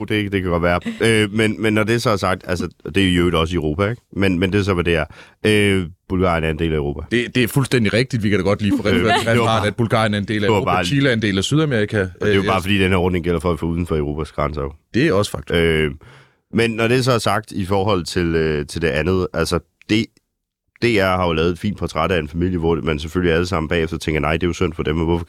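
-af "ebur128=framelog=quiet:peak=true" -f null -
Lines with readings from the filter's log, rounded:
Integrated loudness:
  I:         -18.4 LUFS
  Threshold: -28.6 LUFS
Loudness range:
  LRA:         2.9 LU
  Threshold: -38.6 LUFS
  LRA low:   -20.0 LUFS
  LRA high:  -17.1 LUFS
True peak:
  Peak:       -2.3 dBFS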